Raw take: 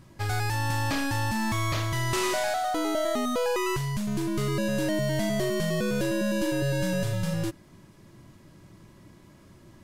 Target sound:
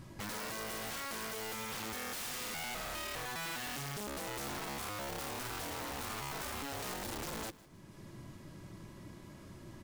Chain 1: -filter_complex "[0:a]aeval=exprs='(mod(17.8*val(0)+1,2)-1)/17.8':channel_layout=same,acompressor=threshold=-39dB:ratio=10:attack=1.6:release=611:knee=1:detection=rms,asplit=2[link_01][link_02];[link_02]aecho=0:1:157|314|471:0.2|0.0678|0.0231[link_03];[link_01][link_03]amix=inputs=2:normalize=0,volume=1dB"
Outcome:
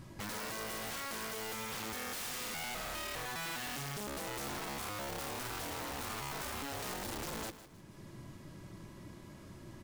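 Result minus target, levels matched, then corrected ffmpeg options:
echo-to-direct +6.5 dB
-filter_complex "[0:a]aeval=exprs='(mod(17.8*val(0)+1,2)-1)/17.8':channel_layout=same,acompressor=threshold=-39dB:ratio=10:attack=1.6:release=611:knee=1:detection=rms,asplit=2[link_01][link_02];[link_02]aecho=0:1:157|314|471:0.0944|0.0321|0.0109[link_03];[link_01][link_03]amix=inputs=2:normalize=0,volume=1dB"

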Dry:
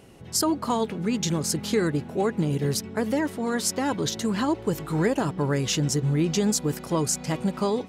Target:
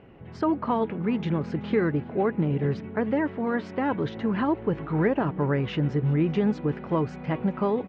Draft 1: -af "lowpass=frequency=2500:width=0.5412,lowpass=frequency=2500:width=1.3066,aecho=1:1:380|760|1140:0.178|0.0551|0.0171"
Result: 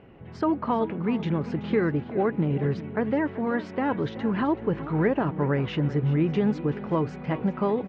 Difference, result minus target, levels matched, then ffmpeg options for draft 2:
echo-to-direct +8 dB
-af "lowpass=frequency=2500:width=0.5412,lowpass=frequency=2500:width=1.3066,aecho=1:1:380|760:0.0708|0.0219"

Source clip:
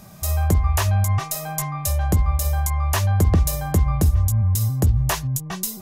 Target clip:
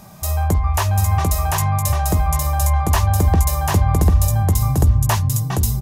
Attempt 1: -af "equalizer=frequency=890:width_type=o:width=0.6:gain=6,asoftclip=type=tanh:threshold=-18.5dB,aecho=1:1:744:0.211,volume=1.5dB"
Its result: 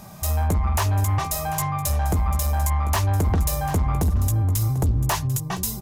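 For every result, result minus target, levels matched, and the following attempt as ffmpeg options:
soft clipping: distortion +13 dB; echo-to-direct −11.5 dB
-af "equalizer=frequency=890:width_type=o:width=0.6:gain=6,asoftclip=type=tanh:threshold=-8.5dB,aecho=1:1:744:0.211,volume=1.5dB"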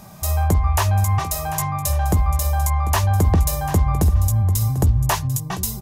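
echo-to-direct −11.5 dB
-af "equalizer=frequency=890:width_type=o:width=0.6:gain=6,asoftclip=type=tanh:threshold=-8.5dB,aecho=1:1:744:0.794,volume=1.5dB"

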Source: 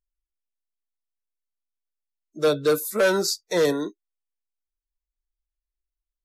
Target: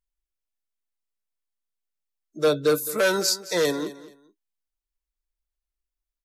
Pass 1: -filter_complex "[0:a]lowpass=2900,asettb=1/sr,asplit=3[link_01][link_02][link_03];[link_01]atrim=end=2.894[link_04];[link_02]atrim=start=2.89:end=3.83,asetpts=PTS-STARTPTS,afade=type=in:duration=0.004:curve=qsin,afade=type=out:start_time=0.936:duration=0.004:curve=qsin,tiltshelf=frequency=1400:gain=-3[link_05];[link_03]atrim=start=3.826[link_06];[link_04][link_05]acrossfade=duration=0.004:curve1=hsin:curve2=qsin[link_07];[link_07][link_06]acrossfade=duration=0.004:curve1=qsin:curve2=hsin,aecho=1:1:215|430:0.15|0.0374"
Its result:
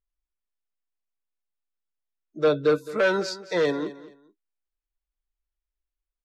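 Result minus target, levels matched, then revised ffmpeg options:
4,000 Hz band −6.0 dB
-filter_complex "[0:a]asettb=1/sr,asplit=3[link_01][link_02][link_03];[link_01]atrim=end=2.894[link_04];[link_02]atrim=start=2.89:end=3.83,asetpts=PTS-STARTPTS,afade=type=in:duration=0.004:curve=qsin,afade=type=out:start_time=0.936:duration=0.004:curve=qsin,tiltshelf=frequency=1400:gain=-3[link_05];[link_03]atrim=start=3.826[link_06];[link_04][link_05]acrossfade=duration=0.004:curve1=hsin:curve2=qsin[link_07];[link_07][link_06]acrossfade=duration=0.004:curve1=qsin:curve2=hsin,aecho=1:1:215|430:0.15|0.0374"

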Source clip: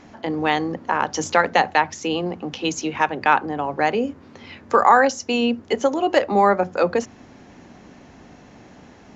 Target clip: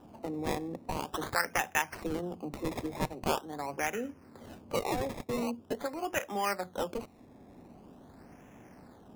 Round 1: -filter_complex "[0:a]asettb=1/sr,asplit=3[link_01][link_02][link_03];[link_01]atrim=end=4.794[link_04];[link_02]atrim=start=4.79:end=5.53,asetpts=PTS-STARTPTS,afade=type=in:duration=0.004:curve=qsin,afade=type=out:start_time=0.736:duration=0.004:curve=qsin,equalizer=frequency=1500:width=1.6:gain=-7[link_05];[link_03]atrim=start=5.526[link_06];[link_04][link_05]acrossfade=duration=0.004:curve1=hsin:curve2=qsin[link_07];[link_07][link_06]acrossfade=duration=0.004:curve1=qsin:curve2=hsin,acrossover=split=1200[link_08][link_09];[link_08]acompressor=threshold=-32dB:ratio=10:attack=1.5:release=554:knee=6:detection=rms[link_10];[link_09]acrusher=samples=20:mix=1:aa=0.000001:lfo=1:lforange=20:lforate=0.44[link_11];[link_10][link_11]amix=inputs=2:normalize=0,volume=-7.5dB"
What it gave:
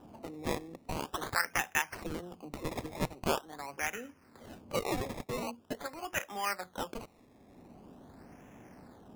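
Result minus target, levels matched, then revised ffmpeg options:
downward compressor: peak gain reduction +9.5 dB
-filter_complex "[0:a]asettb=1/sr,asplit=3[link_01][link_02][link_03];[link_01]atrim=end=4.794[link_04];[link_02]atrim=start=4.79:end=5.53,asetpts=PTS-STARTPTS,afade=type=in:duration=0.004:curve=qsin,afade=type=out:start_time=0.736:duration=0.004:curve=qsin,equalizer=frequency=1500:width=1.6:gain=-7[link_05];[link_03]atrim=start=5.526[link_06];[link_04][link_05]acrossfade=duration=0.004:curve1=hsin:curve2=qsin[link_07];[link_07][link_06]acrossfade=duration=0.004:curve1=qsin:curve2=hsin,acrossover=split=1200[link_08][link_09];[link_08]acompressor=threshold=-21.5dB:ratio=10:attack=1.5:release=554:knee=6:detection=rms[link_10];[link_09]acrusher=samples=20:mix=1:aa=0.000001:lfo=1:lforange=20:lforate=0.44[link_11];[link_10][link_11]amix=inputs=2:normalize=0,volume=-7.5dB"

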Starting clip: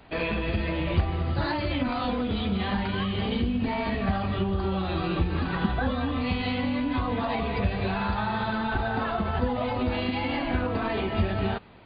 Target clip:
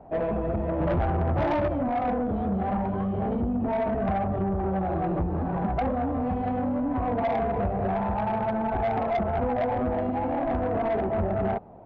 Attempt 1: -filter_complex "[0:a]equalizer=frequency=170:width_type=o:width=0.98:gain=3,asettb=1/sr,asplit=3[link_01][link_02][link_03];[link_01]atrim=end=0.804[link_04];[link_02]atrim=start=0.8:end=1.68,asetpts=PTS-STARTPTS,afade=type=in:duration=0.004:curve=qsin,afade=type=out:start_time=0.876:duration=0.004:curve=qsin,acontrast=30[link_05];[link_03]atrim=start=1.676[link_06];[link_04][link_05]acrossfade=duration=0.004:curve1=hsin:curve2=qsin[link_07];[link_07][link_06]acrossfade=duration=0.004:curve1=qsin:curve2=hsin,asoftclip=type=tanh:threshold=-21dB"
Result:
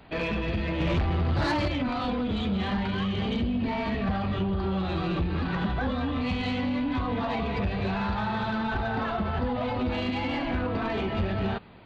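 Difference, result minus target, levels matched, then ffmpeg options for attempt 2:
1,000 Hz band −3.0 dB
-filter_complex "[0:a]lowpass=frequency=710:width_type=q:width=3.4,equalizer=frequency=170:width_type=o:width=0.98:gain=3,asettb=1/sr,asplit=3[link_01][link_02][link_03];[link_01]atrim=end=0.804[link_04];[link_02]atrim=start=0.8:end=1.68,asetpts=PTS-STARTPTS,afade=type=in:duration=0.004:curve=qsin,afade=type=out:start_time=0.876:duration=0.004:curve=qsin,acontrast=30[link_05];[link_03]atrim=start=1.676[link_06];[link_04][link_05]acrossfade=duration=0.004:curve1=hsin:curve2=qsin[link_07];[link_07][link_06]acrossfade=duration=0.004:curve1=qsin:curve2=hsin,asoftclip=type=tanh:threshold=-21dB"

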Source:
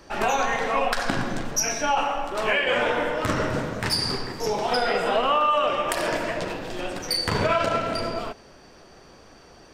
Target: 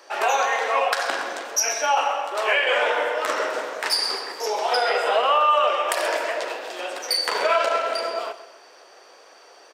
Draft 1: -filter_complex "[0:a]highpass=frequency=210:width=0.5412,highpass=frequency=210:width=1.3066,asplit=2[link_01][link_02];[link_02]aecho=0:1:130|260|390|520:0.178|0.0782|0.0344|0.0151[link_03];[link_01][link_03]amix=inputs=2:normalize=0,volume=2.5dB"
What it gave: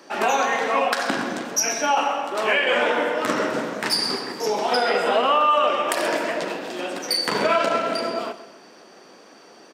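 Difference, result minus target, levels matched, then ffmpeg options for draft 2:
250 Hz band +13.0 dB
-filter_complex "[0:a]highpass=frequency=450:width=0.5412,highpass=frequency=450:width=1.3066,asplit=2[link_01][link_02];[link_02]aecho=0:1:130|260|390|520:0.178|0.0782|0.0344|0.0151[link_03];[link_01][link_03]amix=inputs=2:normalize=0,volume=2.5dB"

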